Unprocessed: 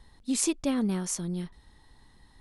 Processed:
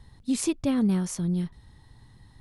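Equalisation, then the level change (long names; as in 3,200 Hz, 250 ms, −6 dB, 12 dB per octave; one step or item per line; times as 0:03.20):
dynamic equaliser 7,400 Hz, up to −5 dB, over −45 dBFS, Q 0.99
parametric band 110 Hz +14 dB 1.3 octaves
0.0 dB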